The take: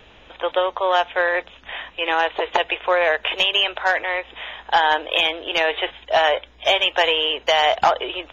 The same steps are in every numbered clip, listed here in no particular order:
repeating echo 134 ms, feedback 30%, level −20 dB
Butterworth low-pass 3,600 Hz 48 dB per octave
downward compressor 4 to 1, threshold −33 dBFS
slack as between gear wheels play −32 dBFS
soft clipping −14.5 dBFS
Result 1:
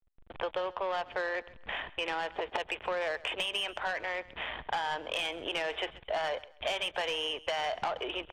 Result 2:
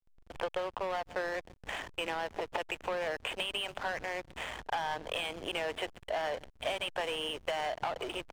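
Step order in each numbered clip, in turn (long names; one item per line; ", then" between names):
slack as between gear wheels, then Butterworth low-pass, then soft clipping, then downward compressor, then repeating echo
repeating echo, then soft clipping, then Butterworth low-pass, then downward compressor, then slack as between gear wheels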